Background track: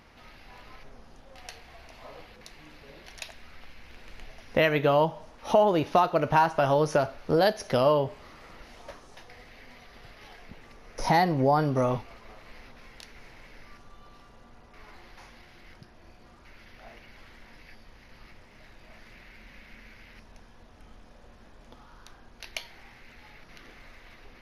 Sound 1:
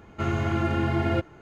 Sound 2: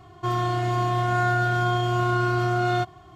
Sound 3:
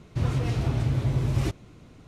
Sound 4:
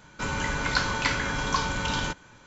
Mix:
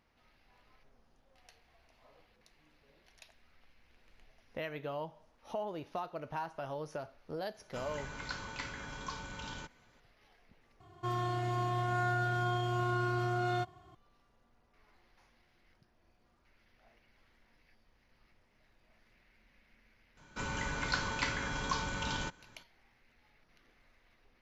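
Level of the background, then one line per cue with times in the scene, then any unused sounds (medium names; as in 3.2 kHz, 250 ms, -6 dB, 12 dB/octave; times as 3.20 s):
background track -17.5 dB
7.54 s: add 4 -16 dB
10.80 s: replace with 2 -10 dB
20.17 s: add 4 -8.5 dB
not used: 1, 3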